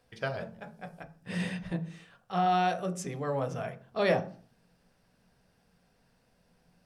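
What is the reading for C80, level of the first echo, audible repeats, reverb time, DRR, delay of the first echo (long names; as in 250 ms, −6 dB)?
19.5 dB, no echo audible, no echo audible, 0.45 s, 7.0 dB, no echo audible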